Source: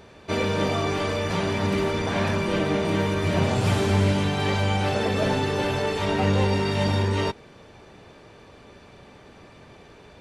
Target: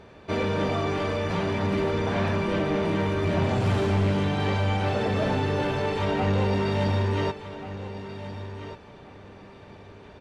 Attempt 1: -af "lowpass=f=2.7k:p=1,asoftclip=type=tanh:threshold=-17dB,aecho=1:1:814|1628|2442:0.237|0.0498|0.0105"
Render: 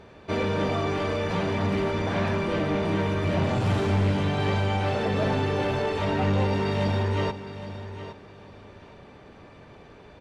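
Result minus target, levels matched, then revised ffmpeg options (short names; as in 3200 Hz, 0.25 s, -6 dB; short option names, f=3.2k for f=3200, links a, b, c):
echo 0.623 s early
-af "lowpass=f=2.7k:p=1,asoftclip=type=tanh:threshold=-17dB,aecho=1:1:1437|2874|4311:0.237|0.0498|0.0105"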